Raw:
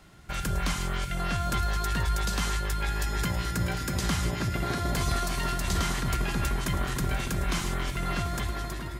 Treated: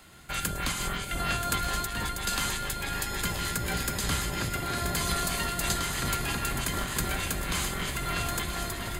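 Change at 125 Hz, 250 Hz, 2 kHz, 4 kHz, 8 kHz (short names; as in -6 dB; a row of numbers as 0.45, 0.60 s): -5.0, -3.0, +1.5, +3.0, +4.5 dB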